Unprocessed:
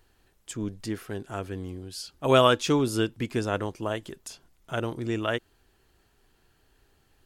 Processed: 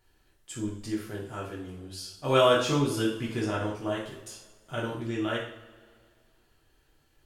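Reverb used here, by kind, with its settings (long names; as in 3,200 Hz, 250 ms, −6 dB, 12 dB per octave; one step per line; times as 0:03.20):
coupled-rooms reverb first 0.53 s, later 2.1 s, from −19 dB, DRR −4.5 dB
level −7.5 dB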